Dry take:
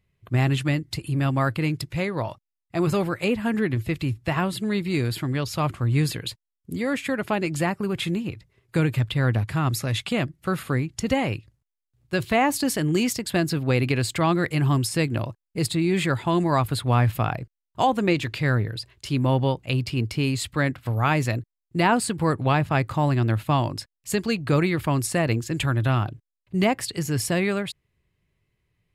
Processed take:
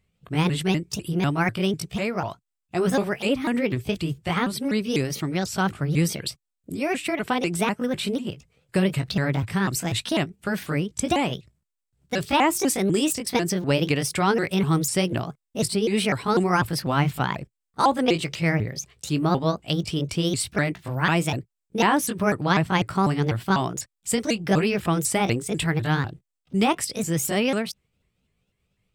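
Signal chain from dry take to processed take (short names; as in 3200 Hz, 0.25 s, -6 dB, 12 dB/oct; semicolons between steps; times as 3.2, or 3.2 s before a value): repeated pitch sweeps +5.5 st, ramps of 0.248 s; thirty-one-band EQ 125 Hz -5 dB, 8000 Hz +8 dB, 12500 Hz -3 dB; gain +1.5 dB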